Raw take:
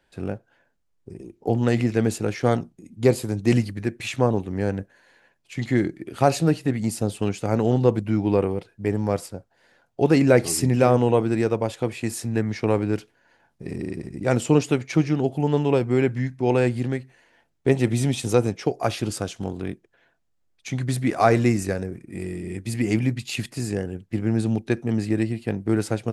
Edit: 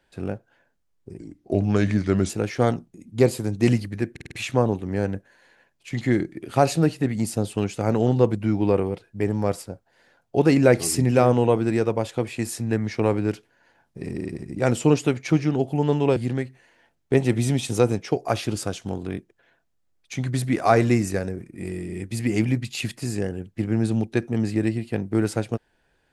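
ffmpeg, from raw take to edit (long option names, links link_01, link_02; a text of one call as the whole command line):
ffmpeg -i in.wav -filter_complex "[0:a]asplit=8[link_01][link_02][link_03][link_04][link_05][link_06][link_07][link_08];[link_01]atrim=end=1.194[link_09];[link_02]atrim=start=1.19:end=2.14,asetpts=PTS-STARTPTS,asetrate=37926,aresample=44100,atrim=end_sample=48715,asetpts=PTS-STARTPTS[link_10];[link_03]atrim=start=2.136:end=4.012[link_11];[link_04]atrim=start=3.958:end=4.012[link_12];[link_05]atrim=start=3.958:end=4.012[link_13];[link_06]atrim=start=3.958:end=4.012[link_14];[link_07]atrim=start=3.958:end=15.812[link_15];[link_08]atrim=start=16.708[link_16];[link_09][link_10]acrossfade=duration=0.004:curve1=hsin:curve2=hsin[link_17];[link_17][link_11]acrossfade=duration=0.004:curve1=hsin:curve2=hsin[link_18];[link_18][link_12]acrossfade=duration=0.004:curve1=hsin:curve2=hsin[link_19];[link_19][link_13]acrossfade=duration=0.004:curve1=hsin:curve2=hsin[link_20];[link_20][link_14]acrossfade=duration=0.004:curve1=hsin:curve2=hsin[link_21];[link_21][link_15]acrossfade=duration=0.004:curve1=hsin:curve2=hsin[link_22];[link_22][link_16]acrossfade=duration=0.004:curve1=hsin:curve2=hsin" out.wav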